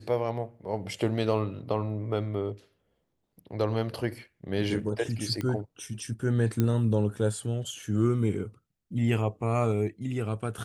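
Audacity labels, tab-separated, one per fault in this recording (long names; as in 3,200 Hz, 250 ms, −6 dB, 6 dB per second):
5.410000	5.410000	click −19 dBFS
6.600000	6.600000	click −13 dBFS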